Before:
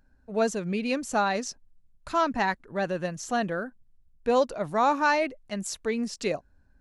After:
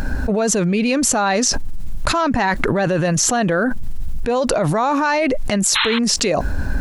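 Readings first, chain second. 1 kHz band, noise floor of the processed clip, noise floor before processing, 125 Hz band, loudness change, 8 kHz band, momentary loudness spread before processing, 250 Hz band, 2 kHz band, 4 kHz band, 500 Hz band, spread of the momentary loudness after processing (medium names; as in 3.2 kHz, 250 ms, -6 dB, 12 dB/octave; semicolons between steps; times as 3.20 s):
+6.5 dB, -22 dBFS, -62 dBFS, +16.5 dB, +10.0 dB, +19.5 dB, 10 LU, +11.5 dB, +9.0 dB, +16.0 dB, +8.0 dB, 8 LU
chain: painted sound noise, 5.75–5.99 s, 830–4200 Hz -33 dBFS; level flattener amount 100%; trim +2 dB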